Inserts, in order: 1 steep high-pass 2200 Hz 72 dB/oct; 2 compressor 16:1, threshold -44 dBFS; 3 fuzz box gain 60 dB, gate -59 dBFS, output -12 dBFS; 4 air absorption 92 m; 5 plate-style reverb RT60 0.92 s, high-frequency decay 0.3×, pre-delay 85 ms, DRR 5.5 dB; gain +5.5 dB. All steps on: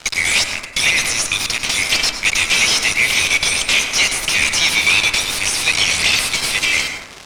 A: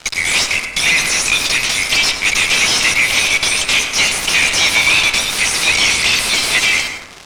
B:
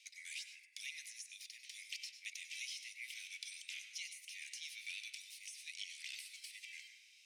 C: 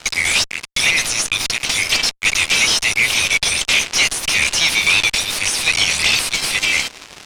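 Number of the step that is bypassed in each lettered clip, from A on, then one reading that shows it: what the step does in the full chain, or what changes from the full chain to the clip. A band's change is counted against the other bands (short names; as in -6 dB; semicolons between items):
2, mean gain reduction 7.5 dB; 3, distortion -5 dB; 5, crest factor change -2.0 dB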